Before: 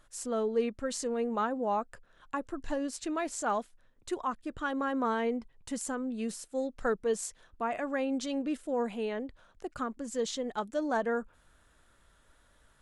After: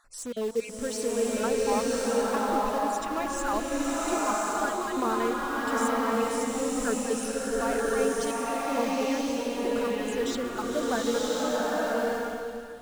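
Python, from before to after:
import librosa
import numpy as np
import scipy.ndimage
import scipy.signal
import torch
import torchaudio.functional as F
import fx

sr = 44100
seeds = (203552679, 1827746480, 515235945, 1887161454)

p1 = fx.spec_dropout(x, sr, seeds[0], share_pct=32)
p2 = (np.mod(10.0 ** (35.0 / 20.0) * p1 + 1.0, 2.0) - 1.0) / 10.0 ** (35.0 / 20.0)
p3 = p1 + (p2 * librosa.db_to_amplitude(-10.0))
p4 = fx.hum_notches(p3, sr, base_hz=50, count=4)
p5 = fx.rev_bloom(p4, sr, seeds[1], attack_ms=1090, drr_db=-6.0)
y = p5 * librosa.db_to_amplitude(1.0)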